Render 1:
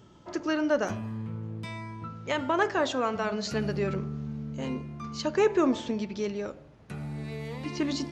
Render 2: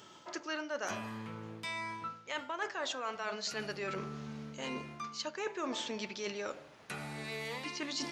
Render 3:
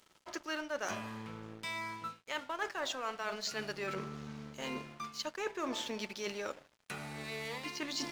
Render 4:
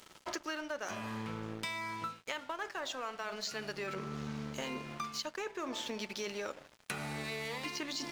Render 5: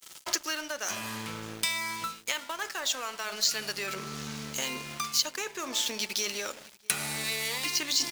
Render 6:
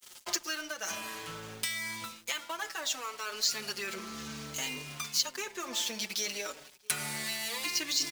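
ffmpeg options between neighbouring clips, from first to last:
-af "highpass=f=1400:p=1,areverse,acompressor=threshold=0.00562:ratio=5,areverse,volume=2.82"
-af "aeval=exprs='sgn(val(0))*max(abs(val(0))-0.00224,0)':c=same,volume=1.12"
-af "acompressor=threshold=0.00562:ratio=10,volume=2.99"
-filter_complex "[0:a]asplit=2[s0][s1];[s1]adelay=641.4,volume=0.112,highshelf=f=4000:g=-14.4[s2];[s0][s2]amix=inputs=2:normalize=0,agate=range=0.0224:threshold=0.002:ratio=3:detection=peak,crystalizer=i=6.5:c=0"
-filter_complex "[0:a]asplit=2[s0][s1];[s1]adelay=5.1,afreqshift=-0.57[s2];[s0][s2]amix=inputs=2:normalize=1"

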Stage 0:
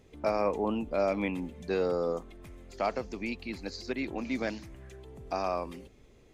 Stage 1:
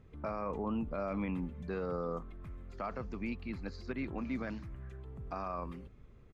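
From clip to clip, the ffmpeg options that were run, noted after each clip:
-af "firequalizer=gain_entry='entry(150,0);entry(300,-9);entry(800,-10);entry(1200,-1);entry(1900,-9);entry(3200,-14);entry(6200,-20)':delay=0.05:min_phase=1,alimiter=level_in=2.37:limit=0.0631:level=0:latency=1:release=28,volume=0.422,volume=1.5"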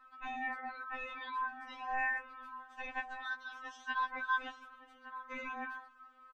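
-filter_complex "[0:a]aeval=exprs='val(0)*sin(2*PI*1300*n/s)':c=same,asplit=2[s0][s1];[s1]adelay=1166,volume=0.316,highshelf=f=4000:g=-26.2[s2];[s0][s2]amix=inputs=2:normalize=0,afftfilt=real='re*3.46*eq(mod(b,12),0)':imag='im*3.46*eq(mod(b,12),0)':win_size=2048:overlap=0.75,volume=1.33"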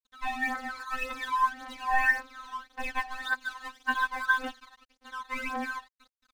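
-af "aresample=11025,aresample=44100,aeval=exprs='sgn(val(0))*max(abs(val(0))-0.00211,0)':c=same,aphaser=in_gain=1:out_gain=1:delay=1.2:decay=0.64:speed=1.8:type=triangular,volume=2.51"

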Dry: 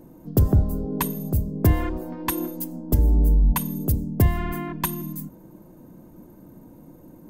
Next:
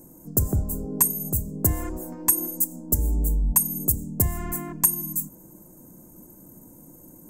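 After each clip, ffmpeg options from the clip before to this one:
-filter_complex "[0:a]highshelf=f=5300:t=q:w=3:g=14,asplit=2[s0][s1];[s1]acompressor=threshold=0.0794:ratio=6,volume=0.841[s2];[s0][s2]amix=inputs=2:normalize=0,volume=0.376"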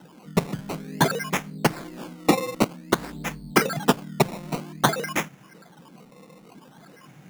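-af "crystalizer=i=1.5:c=0,acrusher=samples=19:mix=1:aa=0.000001:lfo=1:lforange=19:lforate=0.52,lowshelf=f=110:t=q:w=3:g=-14,volume=0.376"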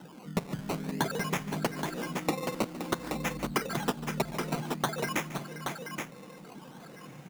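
-filter_complex "[0:a]acompressor=threshold=0.0398:ratio=5,asplit=2[s0][s1];[s1]aecho=0:1:145|521|825:0.15|0.299|0.501[s2];[s0][s2]amix=inputs=2:normalize=0"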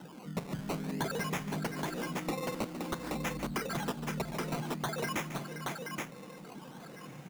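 -af "asoftclip=type=tanh:threshold=0.0398"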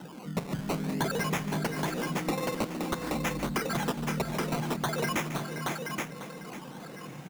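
-af "aecho=1:1:547:0.251,volume=1.68"

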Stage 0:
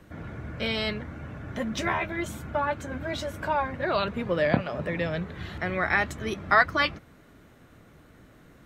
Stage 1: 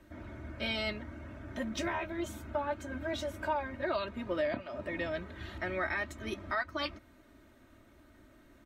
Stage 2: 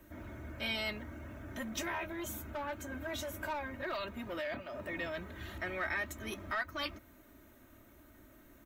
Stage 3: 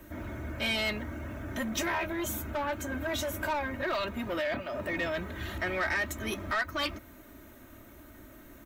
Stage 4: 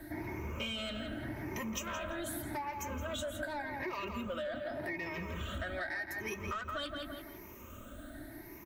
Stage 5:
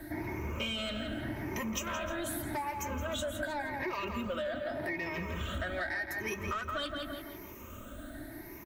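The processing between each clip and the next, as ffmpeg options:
-af "aecho=1:1:3.2:0.75,alimiter=limit=0.178:level=0:latency=1:release=433,volume=0.422"
-filter_complex "[0:a]equalizer=f=8700:w=1.4:g=-9.5,acrossover=split=1300[s0][s1];[s0]asoftclip=type=tanh:threshold=0.0126[s2];[s1]aexciter=amount=5.6:drive=3.2:freq=6500[s3];[s2][s3]amix=inputs=2:normalize=0"
-af "asoftclip=type=tanh:threshold=0.0299,volume=2.51"
-filter_complex "[0:a]afftfilt=real='re*pow(10,15/40*sin(2*PI*(0.79*log(max(b,1)*sr/1024/100)/log(2)-(0.85)*(pts-256)/sr)))':imag='im*pow(10,15/40*sin(2*PI*(0.79*log(max(b,1)*sr/1024/100)/log(2)-(0.85)*(pts-256)/sr)))':win_size=1024:overlap=0.75,asplit=2[s0][s1];[s1]adelay=168,lowpass=f=3400:p=1,volume=0.447,asplit=2[s2][s3];[s3]adelay=168,lowpass=f=3400:p=1,volume=0.3,asplit=2[s4][s5];[s5]adelay=168,lowpass=f=3400:p=1,volume=0.3,asplit=2[s6][s7];[s7]adelay=168,lowpass=f=3400:p=1,volume=0.3[s8];[s0][s2][s4][s6][s8]amix=inputs=5:normalize=0,acompressor=threshold=0.0178:ratio=10,volume=0.891"
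-af "aecho=1:1:308:0.141,volume=1.41"

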